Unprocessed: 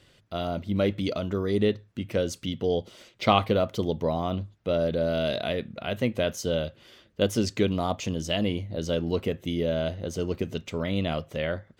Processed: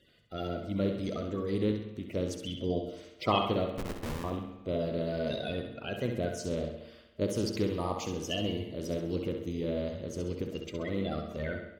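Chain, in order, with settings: coarse spectral quantiser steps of 30 dB; 3.71–4.24 s: Schmitt trigger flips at -26 dBFS; 7.46–9.15 s: treble shelf 9.2 kHz +9 dB; on a send: feedback delay 66 ms, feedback 45%, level -7 dB; on the sum: spring tank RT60 1 s, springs 51/57 ms, chirp 50 ms, DRR 8 dB; trim -6.5 dB

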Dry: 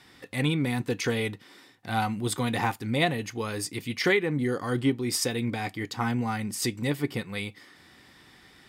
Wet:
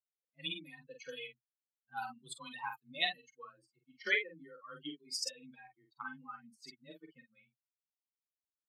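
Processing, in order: expander on every frequency bin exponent 3; treble shelf 6 kHz -9 dB; doubling 47 ms -6 dB; level-controlled noise filter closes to 450 Hz, open at -27.5 dBFS; differentiator; frequency shift +22 Hz; trim +9.5 dB

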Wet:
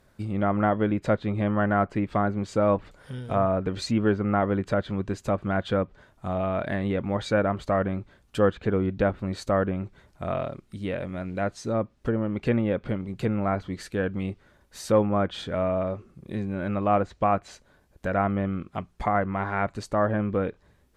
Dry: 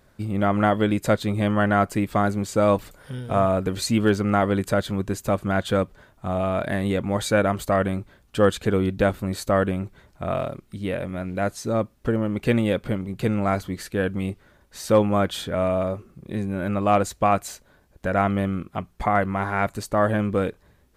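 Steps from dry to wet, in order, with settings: low-pass that closes with the level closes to 1.9 kHz, closed at -17.5 dBFS; trim -3 dB

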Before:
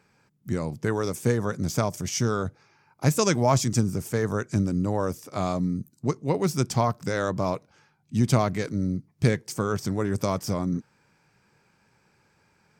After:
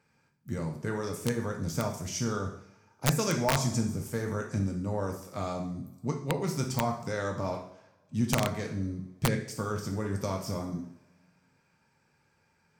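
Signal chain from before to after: two-slope reverb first 0.6 s, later 2.1 s, from -25 dB, DRR 1 dB; integer overflow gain 8.5 dB; trim -8 dB

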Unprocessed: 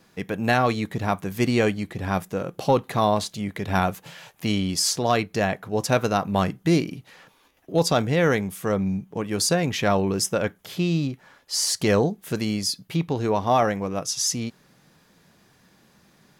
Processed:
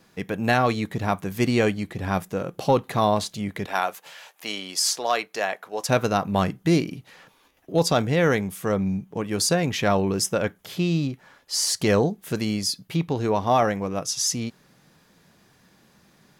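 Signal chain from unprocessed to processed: 3.66–5.89 s: high-pass 550 Hz 12 dB/octave

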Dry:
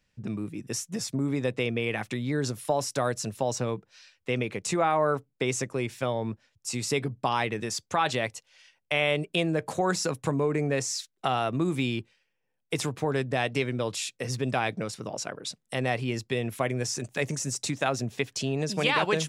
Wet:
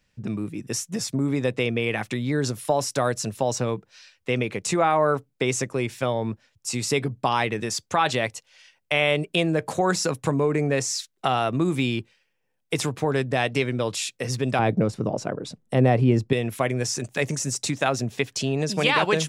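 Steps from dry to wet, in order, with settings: 14.59–16.33 s: tilt shelf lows +9 dB, about 1.1 kHz; trim +4 dB

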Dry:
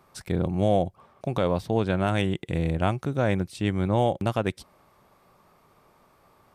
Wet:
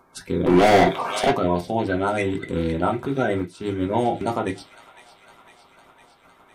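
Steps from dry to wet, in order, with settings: coarse spectral quantiser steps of 30 dB; in parallel at -3 dB: level held to a coarse grid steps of 20 dB; on the sum: bass shelf 150 Hz -4 dB; feedback echo behind a high-pass 506 ms, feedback 71%, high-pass 1.7 kHz, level -13.5 dB; 0.46–1.31 s: overdrive pedal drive 33 dB, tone 5.1 kHz, clips at -10.5 dBFS; on a send at -1 dB: reverberation RT60 0.20 s, pre-delay 3 ms; 3.42–3.94 s: on the sum: upward expansion 1.5:1, over -34 dBFS

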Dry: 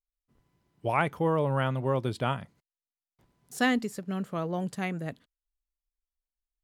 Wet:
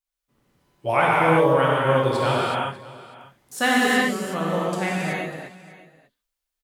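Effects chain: bass shelf 250 Hz -11.5 dB; on a send: delay 595 ms -19.5 dB; on the sum: gated-style reverb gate 400 ms flat, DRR -7 dB; trim +4 dB

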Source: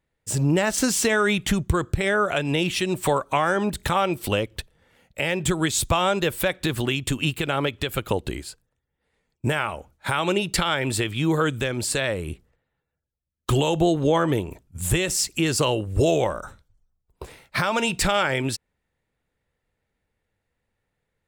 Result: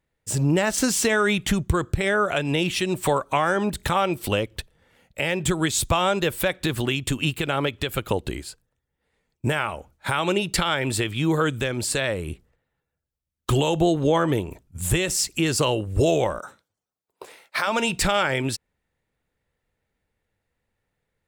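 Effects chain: 16.38–17.66 s: high-pass 230 Hz -> 500 Hz 12 dB/octave

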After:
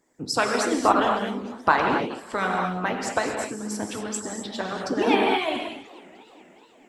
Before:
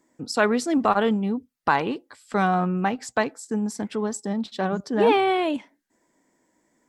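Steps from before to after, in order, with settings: gated-style reverb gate 280 ms flat, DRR -1.5 dB; harmonic-percussive split harmonic -16 dB; modulated delay 428 ms, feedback 59%, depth 209 cents, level -23 dB; trim +4 dB

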